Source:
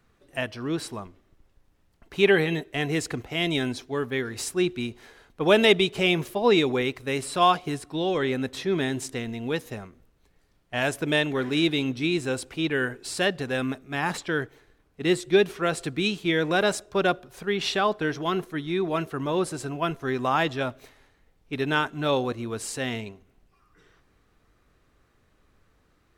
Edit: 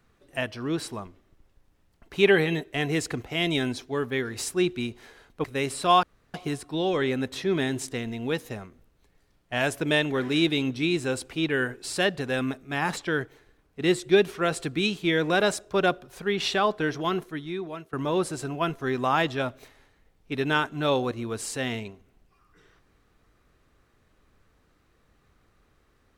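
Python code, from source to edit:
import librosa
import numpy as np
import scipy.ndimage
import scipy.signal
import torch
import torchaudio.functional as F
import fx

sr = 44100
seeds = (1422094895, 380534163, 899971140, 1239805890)

y = fx.edit(x, sr, fx.cut(start_s=5.44, length_s=1.52),
    fx.insert_room_tone(at_s=7.55, length_s=0.31),
    fx.fade_out_to(start_s=18.26, length_s=0.88, floor_db=-19.0), tone=tone)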